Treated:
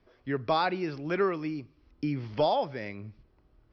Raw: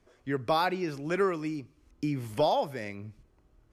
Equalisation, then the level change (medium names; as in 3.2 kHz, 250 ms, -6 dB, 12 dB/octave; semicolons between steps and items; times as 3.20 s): steep low-pass 5.4 kHz 72 dB/octave; 0.0 dB